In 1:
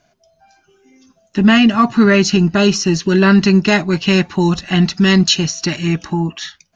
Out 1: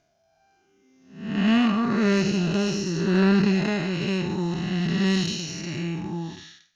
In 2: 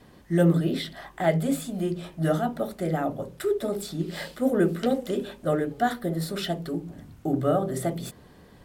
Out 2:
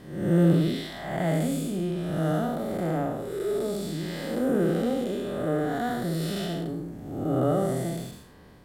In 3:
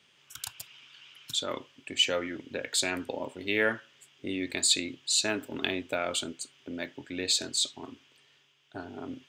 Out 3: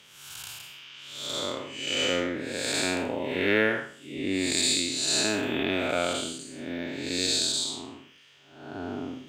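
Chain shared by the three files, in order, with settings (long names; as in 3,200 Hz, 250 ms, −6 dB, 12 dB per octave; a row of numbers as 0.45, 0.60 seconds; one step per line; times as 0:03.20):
spectrum smeared in time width 320 ms
harmonic generator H 3 −20 dB, 8 −40 dB, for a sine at −4.5 dBFS
reverb reduction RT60 0.58 s
normalise the peak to −9 dBFS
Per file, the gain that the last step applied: −3.0, +8.5, +14.0 decibels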